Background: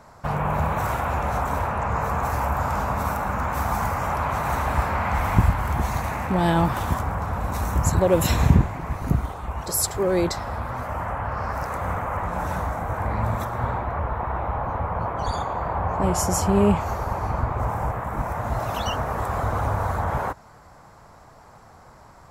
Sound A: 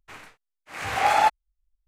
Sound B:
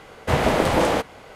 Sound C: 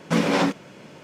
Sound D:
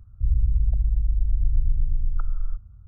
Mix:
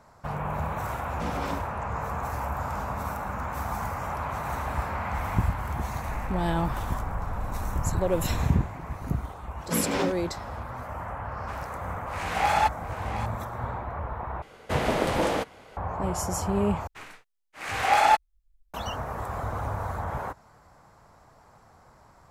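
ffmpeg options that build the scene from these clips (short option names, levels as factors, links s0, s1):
-filter_complex "[3:a]asplit=2[s0][s1];[1:a]asplit=2[s2][s3];[0:a]volume=0.447[s4];[4:a]alimiter=limit=0.168:level=0:latency=1:release=71[s5];[s2]aecho=1:1:710:0.266[s6];[s3]asubboost=boost=5:cutoff=66[s7];[s4]asplit=3[s8][s9][s10];[s8]atrim=end=14.424[s11];[2:a]atrim=end=1.35,asetpts=PTS-STARTPTS,volume=0.501[s12];[s9]atrim=start=15.766:end=16.874[s13];[s7]atrim=end=1.87[s14];[s10]atrim=start=18.736[s15];[s0]atrim=end=1.03,asetpts=PTS-STARTPTS,volume=0.188,afade=t=in:d=0.004:c=hsin,afade=t=out:st=1.026:d=0.004:c=hsin,adelay=1090[s16];[s5]atrim=end=2.87,asetpts=PTS-STARTPTS,volume=0.251,afade=t=in:d=0.004:c=hsin,afade=t=out:st=2.866:d=0.004:c=hsin,adelay=5860[s17];[s1]atrim=end=1.03,asetpts=PTS-STARTPTS,volume=0.447,afade=t=in:d=0.004:c=hsin,afade=t=out:st=1.026:d=0.004:c=hsin,adelay=9600[s18];[s6]atrim=end=1.87,asetpts=PTS-STARTPTS,volume=0.668,afade=t=in:d=0.004:c=hsin,afade=t=out:st=1.866:d=0.004:c=hsin,adelay=11390[s19];[s11][s12]acrossfade=d=0.004:c1=hsin:c2=hsin[s20];[s20][s13]acrossfade=d=0.004:c1=hsin:c2=hsin[s21];[s21][s14]acrossfade=d=0.004:c1=hsin:c2=hsin[s22];[s22][s15]acrossfade=d=0.004:c1=hsin:c2=hsin[s23];[s23][s16][s17][s18][s19]amix=inputs=5:normalize=0"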